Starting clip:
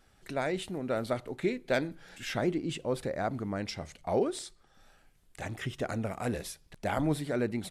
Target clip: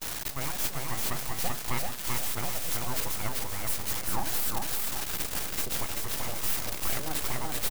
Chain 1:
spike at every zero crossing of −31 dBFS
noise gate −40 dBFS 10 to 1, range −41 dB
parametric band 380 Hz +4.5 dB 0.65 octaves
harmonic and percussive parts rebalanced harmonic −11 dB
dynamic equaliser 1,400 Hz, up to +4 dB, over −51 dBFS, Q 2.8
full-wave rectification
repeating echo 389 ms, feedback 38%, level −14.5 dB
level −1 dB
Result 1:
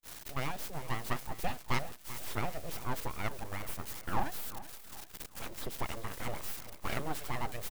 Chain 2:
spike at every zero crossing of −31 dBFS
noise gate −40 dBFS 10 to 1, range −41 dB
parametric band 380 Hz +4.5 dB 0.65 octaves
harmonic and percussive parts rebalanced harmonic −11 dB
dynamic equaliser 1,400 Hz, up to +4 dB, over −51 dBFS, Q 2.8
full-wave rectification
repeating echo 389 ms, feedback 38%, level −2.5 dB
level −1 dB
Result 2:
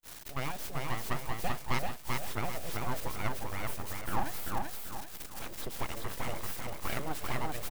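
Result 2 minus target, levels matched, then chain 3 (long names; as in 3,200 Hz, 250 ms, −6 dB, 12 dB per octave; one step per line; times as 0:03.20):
spike at every zero crossing: distortion −11 dB
spike at every zero crossing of −19.5 dBFS
noise gate −40 dBFS 10 to 1, range −41 dB
parametric band 380 Hz +4.5 dB 0.65 octaves
harmonic and percussive parts rebalanced harmonic −11 dB
dynamic equaliser 1,400 Hz, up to +4 dB, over −51 dBFS, Q 2.8
full-wave rectification
repeating echo 389 ms, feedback 38%, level −2.5 dB
level −1 dB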